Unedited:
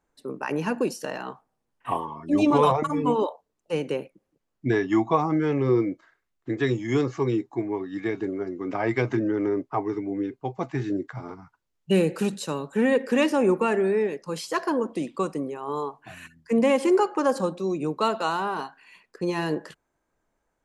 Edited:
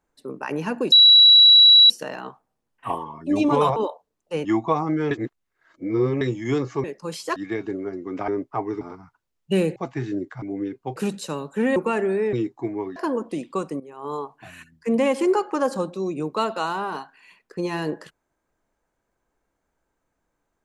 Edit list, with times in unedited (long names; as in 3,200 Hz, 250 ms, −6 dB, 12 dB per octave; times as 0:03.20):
0:00.92: insert tone 3,910 Hz −8 dBFS 0.98 s
0:02.78–0:03.15: remove
0:03.84–0:04.88: remove
0:05.54–0:06.64: reverse
0:07.27–0:07.90: swap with 0:14.08–0:14.60
0:08.82–0:09.47: remove
0:10.00–0:10.54: swap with 0:11.20–0:12.15
0:12.95–0:13.51: remove
0:15.44–0:15.78: fade in, from −15.5 dB